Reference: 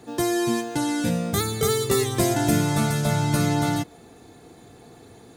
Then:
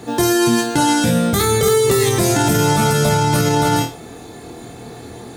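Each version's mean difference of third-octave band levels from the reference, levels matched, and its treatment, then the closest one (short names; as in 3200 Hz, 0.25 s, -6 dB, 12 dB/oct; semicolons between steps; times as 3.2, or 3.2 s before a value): 4.0 dB: on a send: flutter echo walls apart 4.3 m, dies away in 0.29 s; on the sum: maximiser +17 dB; gain -5.5 dB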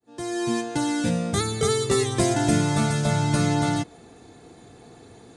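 2.5 dB: opening faded in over 0.60 s; steep low-pass 10000 Hz 48 dB/oct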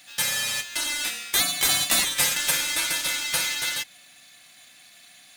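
12.5 dB: inverse Chebyshev high-pass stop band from 600 Hz, stop band 60 dB; in parallel at -5.5 dB: sample-rate reducer 10000 Hz, jitter 0%; on the sum: gain +7 dB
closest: second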